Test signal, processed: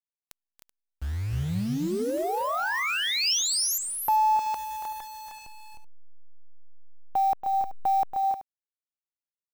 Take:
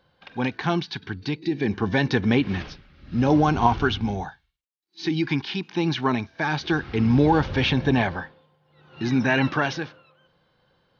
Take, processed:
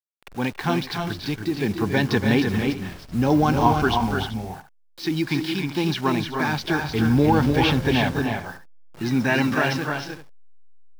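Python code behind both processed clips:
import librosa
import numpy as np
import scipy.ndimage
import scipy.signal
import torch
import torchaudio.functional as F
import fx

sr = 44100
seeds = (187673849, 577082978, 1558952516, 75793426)

y = fx.delta_hold(x, sr, step_db=-38.0)
y = fx.dynamic_eq(y, sr, hz=5200.0, q=3.2, threshold_db=-52.0, ratio=4.0, max_db=5)
y = fx.echo_multitap(y, sr, ms=(281, 309, 381), db=(-9.5, -5.5, -16.0))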